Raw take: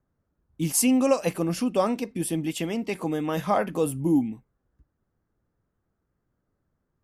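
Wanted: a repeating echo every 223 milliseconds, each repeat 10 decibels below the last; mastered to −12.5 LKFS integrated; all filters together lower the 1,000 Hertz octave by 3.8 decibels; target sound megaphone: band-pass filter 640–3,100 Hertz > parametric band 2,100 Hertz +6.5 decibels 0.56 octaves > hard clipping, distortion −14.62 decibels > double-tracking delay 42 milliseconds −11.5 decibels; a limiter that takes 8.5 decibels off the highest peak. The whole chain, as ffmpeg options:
ffmpeg -i in.wav -filter_complex "[0:a]equalizer=frequency=1000:width_type=o:gain=-4,alimiter=limit=-18dB:level=0:latency=1,highpass=640,lowpass=3100,equalizer=frequency=2100:width_type=o:width=0.56:gain=6.5,aecho=1:1:223|446|669|892:0.316|0.101|0.0324|0.0104,asoftclip=type=hard:threshold=-27dB,asplit=2[link_01][link_02];[link_02]adelay=42,volume=-11.5dB[link_03];[link_01][link_03]amix=inputs=2:normalize=0,volume=23.5dB" out.wav

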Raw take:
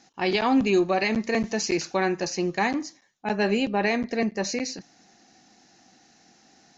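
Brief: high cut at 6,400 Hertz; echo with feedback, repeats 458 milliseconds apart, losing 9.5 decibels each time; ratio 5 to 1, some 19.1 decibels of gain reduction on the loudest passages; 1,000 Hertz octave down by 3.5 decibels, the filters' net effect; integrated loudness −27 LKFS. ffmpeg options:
ffmpeg -i in.wav -af "lowpass=6400,equalizer=frequency=1000:width_type=o:gain=-5,acompressor=threshold=-40dB:ratio=5,aecho=1:1:458|916|1374|1832:0.335|0.111|0.0365|0.012,volume=14.5dB" out.wav

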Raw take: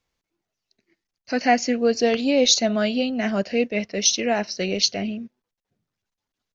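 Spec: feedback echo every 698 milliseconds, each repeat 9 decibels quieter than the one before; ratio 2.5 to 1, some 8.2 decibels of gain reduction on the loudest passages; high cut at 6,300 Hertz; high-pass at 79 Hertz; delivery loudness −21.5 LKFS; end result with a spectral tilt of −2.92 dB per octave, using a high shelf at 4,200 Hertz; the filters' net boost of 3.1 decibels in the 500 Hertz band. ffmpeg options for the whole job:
ffmpeg -i in.wav -af "highpass=79,lowpass=6300,equalizer=frequency=500:width_type=o:gain=3.5,highshelf=frequency=4200:gain=4.5,acompressor=threshold=-24dB:ratio=2.5,aecho=1:1:698|1396|2094|2792:0.355|0.124|0.0435|0.0152,volume=4dB" out.wav

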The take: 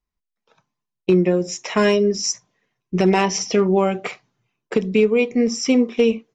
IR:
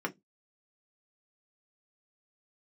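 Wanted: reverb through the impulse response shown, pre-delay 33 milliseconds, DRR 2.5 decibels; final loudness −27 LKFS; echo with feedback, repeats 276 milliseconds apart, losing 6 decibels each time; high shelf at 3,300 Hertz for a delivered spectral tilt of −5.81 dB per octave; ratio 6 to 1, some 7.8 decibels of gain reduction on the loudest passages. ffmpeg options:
-filter_complex "[0:a]highshelf=frequency=3300:gain=-9,acompressor=threshold=-20dB:ratio=6,aecho=1:1:276|552|828|1104|1380|1656:0.501|0.251|0.125|0.0626|0.0313|0.0157,asplit=2[link_01][link_02];[1:a]atrim=start_sample=2205,adelay=33[link_03];[link_02][link_03]afir=irnorm=-1:irlink=0,volume=-7.5dB[link_04];[link_01][link_04]amix=inputs=2:normalize=0,volume=-4.5dB"

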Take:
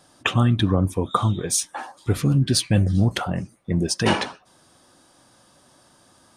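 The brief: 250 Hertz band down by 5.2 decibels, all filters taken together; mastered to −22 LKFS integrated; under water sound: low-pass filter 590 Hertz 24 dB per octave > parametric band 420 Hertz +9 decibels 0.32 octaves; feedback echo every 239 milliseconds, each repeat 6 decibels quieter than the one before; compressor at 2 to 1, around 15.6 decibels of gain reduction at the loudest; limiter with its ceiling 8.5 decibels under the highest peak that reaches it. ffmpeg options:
ffmpeg -i in.wav -af "equalizer=frequency=250:width_type=o:gain=-8.5,acompressor=threshold=-48dB:ratio=2,alimiter=level_in=5.5dB:limit=-24dB:level=0:latency=1,volume=-5.5dB,lowpass=frequency=590:width=0.5412,lowpass=frequency=590:width=1.3066,equalizer=frequency=420:width_type=o:width=0.32:gain=9,aecho=1:1:239|478|717|956|1195|1434:0.501|0.251|0.125|0.0626|0.0313|0.0157,volume=19dB" out.wav

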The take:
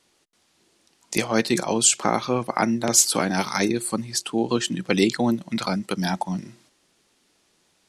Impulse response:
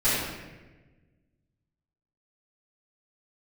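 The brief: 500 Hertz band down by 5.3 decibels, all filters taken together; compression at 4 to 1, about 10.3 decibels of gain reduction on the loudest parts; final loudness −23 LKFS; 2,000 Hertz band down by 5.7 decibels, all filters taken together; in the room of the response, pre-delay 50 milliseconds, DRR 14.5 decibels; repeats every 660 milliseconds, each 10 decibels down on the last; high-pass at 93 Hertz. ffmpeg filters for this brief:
-filter_complex "[0:a]highpass=93,equalizer=frequency=500:width_type=o:gain=-7,equalizer=frequency=2000:width_type=o:gain=-7,acompressor=threshold=-25dB:ratio=4,aecho=1:1:660|1320|1980|2640:0.316|0.101|0.0324|0.0104,asplit=2[link_01][link_02];[1:a]atrim=start_sample=2205,adelay=50[link_03];[link_02][link_03]afir=irnorm=-1:irlink=0,volume=-29.5dB[link_04];[link_01][link_04]amix=inputs=2:normalize=0,volume=6dB"

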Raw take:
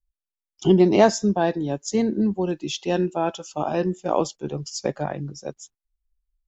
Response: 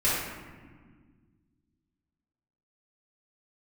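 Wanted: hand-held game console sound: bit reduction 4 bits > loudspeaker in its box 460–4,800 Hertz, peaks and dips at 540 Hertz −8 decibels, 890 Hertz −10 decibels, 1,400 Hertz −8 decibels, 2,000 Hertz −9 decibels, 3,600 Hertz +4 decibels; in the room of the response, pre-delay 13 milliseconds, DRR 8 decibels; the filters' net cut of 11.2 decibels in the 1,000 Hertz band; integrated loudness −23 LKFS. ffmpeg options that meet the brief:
-filter_complex "[0:a]equalizer=frequency=1000:width_type=o:gain=-7.5,asplit=2[link_01][link_02];[1:a]atrim=start_sample=2205,adelay=13[link_03];[link_02][link_03]afir=irnorm=-1:irlink=0,volume=-21dB[link_04];[link_01][link_04]amix=inputs=2:normalize=0,acrusher=bits=3:mix=0:aa=0.000001,highpass=460,equalizer=frequency=540:width_type=q:width=4:gain=-8,equalizer=frequency=890:width_type=q:width=4:gain=-10,equalizer=frequency=1400:width_type=q:width=4:gain=-8,equalizer=frequency=2000:width_type=q:width=4:gain=-9,equalizer=frequency=3600:width_type=q:width=4:gain=4,lowpass=frequency=4800:width=0.5412,lowpass=frequency=4800:width=1.3066,volume=6.5dB"

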